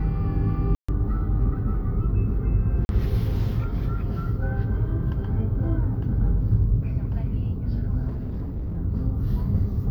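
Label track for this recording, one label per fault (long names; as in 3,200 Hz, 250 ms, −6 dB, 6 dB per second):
0.750000	0.890000	drop-out 135 ms
2.850000	2.890000	drop-out 41 ms
8.070000	8.780000	clipping −26 dBFS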